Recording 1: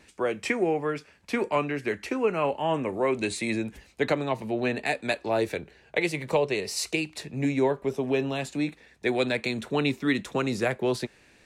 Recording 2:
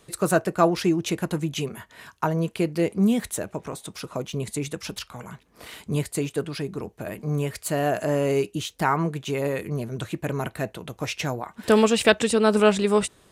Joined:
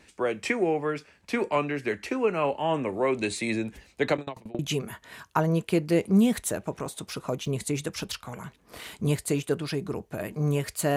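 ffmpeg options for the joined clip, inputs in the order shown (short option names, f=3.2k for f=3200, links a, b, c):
-filter_complex "[0:a]asplit=3[a][b][c];[a]afade=t=out:st=4.16:d=0.02[d];[b]aeval=exprs='val(0)*pow(10,-26*if(lt(mod(11*n/s,1),2*abs(11)/1000),1-mod(11*n/s,1)/(2*abs(11)/1000),(mod(11*n/s,1)-2*abs(11)/1000)/(1-2*abs(11)/1000))/20)':c=same,afade=t=in:st=4.16:d=0.02,afade=t=out:st=4.59:d=0.02[e];[c]afade=t=in:st=4.59:d=0.02[f];[d][e][f]amix=inputs=3:normalize=0,apad=whole_dur=10.96,atrim=end=10.96,atrim=end=4.592[g];[1:a]atrim=start=1.458:end=7.83[h];[g][h]acrossfade=d=0.004:c1=hsin:c2=hsin"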